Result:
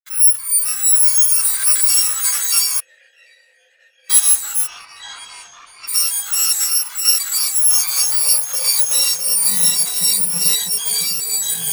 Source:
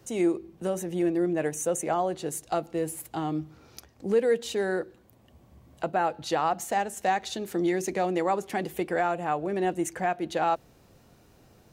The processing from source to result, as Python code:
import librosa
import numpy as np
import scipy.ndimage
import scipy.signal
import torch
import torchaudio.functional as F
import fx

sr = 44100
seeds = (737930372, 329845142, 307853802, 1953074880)

p1 = fx.bit_reversed(x, sr, seeds[0], block=128)
p2 = scipy.signal.sosfilt(scipy.signal.butter(2, 61.0, 'highpass', fs=sr, output='sos'), p1)
p3 = np.clip(10.0 ** (28.5 / 20.0) * p2, -1.0, 1.0) / 10.0 ** (28.5 / 20.0)
p4 = p2 + (p3 * 10.0 ** (-3.0 / 20.0))
p5 = fx.filter_sweep_highpass(p4, sr, from_hz=1400.0, to_hz=230.0, start_s=7.18, end_s=9.66, q=2.4)
p6 = fx.quant_dither(p5, sr, seeds[1], bits=6, dither='none')
p7 = p6 + 10.0 ** (-3.5 / 20.0) * np.pad(p6, (int(656 * sr / 1000.0), 0))[:len(p6)]
p8 = fx.echo_pitch(p7, sr, ms=261, semitones=-3, count=3, db_per_echo=-3.0)
p9 = fx.vowel_filter(p8, sr, vowel='e', at=(2.8, 4.1))
p10 = fx.air_absorb(p9, sr, metres=120.0, at=(4.66, 5.87), fade=0.02)
p11 = fx.spectral_expand(p10, sr, expansion=1.5)
y = p11 * 10.0 ** (4.0 / 20.0)